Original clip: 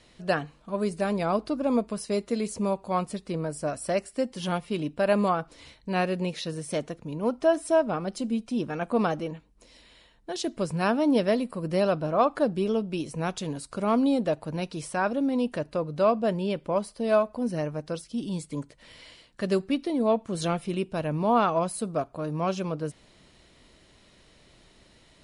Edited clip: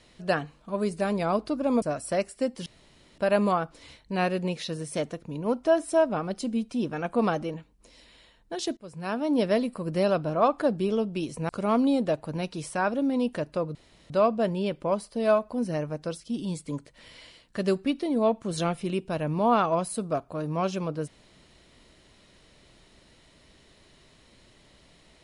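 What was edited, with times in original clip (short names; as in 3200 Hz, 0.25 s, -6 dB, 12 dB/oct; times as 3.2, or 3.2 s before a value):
1.82–3.59 cut
4.43–4.95 room tone
10.54–11.29 fade in linear, from -23 dB
13.26–13.68 cut
15.94 insert room tone 0.35 s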